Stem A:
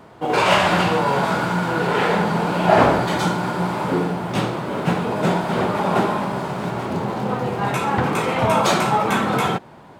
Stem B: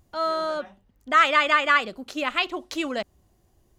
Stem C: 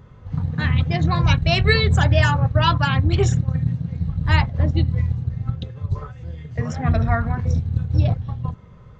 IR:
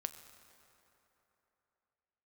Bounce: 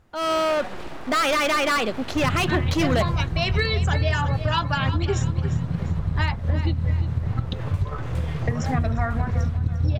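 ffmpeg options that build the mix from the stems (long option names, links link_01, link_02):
-filter_complex "[0:a]acrossover=split=330[link_01][link_02];[link_02]acompressor=threshold=-26dB:ratio=6[link_03];[link_01][link_03]amix=inputs=2:normalize=0,aeval=exprs='abs(val(0))':channel_layout=same,volume=-18.5dB,asplit=2[link_04][link_05];[link_05]volume=-17.5dB[link_06];[1:a]highshelf=frequency=5100:gain=-10,alimiter=limit=-15dB:level=0:latency=1:release=56,asoftclip=type=hard:threshold=-28.5dB,volume=1.5dB,asplit=2[link_07][link_08];[2:a]adynamicequalizer=threshold=0.0224:dfrequency=130:dqfactor=2.4:tfrequency=130:tqfactor=2.4:attack=5:release=100:ratio=0.375:range=2.5:mode=cutabove:tftype=bell,asoftclip=type=hard:threshold=-7dB,adelay=1900,volume=-0.5dB,asplit=2[link_09][link_10];[link_10]volume=-24dB[link_11];[link_08]apad=whole_len=480565[link_12];[link_09][link_12]sidechaincompress=threshold=-36dB:ratio=8:attack=16:release=1160[link_13];[link_04][link_13]amix=inputs=2:normalize=0,acompressor=threshold=-28dB:ratio=6,volume=0dB[link_14];[link_06][link_11]amix=inputs=2:normalize=0,aecho=0:1:350|700|1050|1400|1750:1|0.38|0.144|0.0549|0.0209[link_15];[link_07][link_14][link_15]amix=inputs=3:normalize=0,dynaudnorm=framelen=160:gausssize=3:maxgain=8dB"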